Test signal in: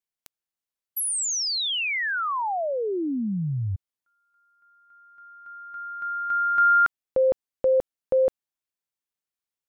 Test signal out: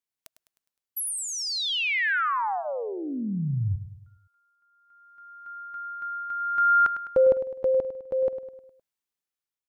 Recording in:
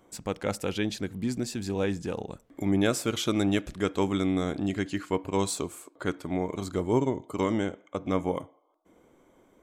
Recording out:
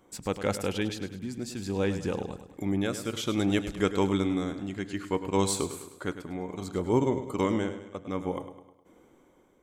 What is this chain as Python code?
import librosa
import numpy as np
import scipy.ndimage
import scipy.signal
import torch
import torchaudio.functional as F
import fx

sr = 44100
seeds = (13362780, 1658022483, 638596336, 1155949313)

y = fx.notch(x, sr, hz=650.0, q=12.0)
y = fx.tremolo_shape(y, sr, shape='triangle', hz=0.59, depth_pct=65)
y = fx.echo_feedback(y, sr, ms=103, feedback_pct=49, wet_db=-11.5)
y = y * 10.0 ** (2.0 / 20.0)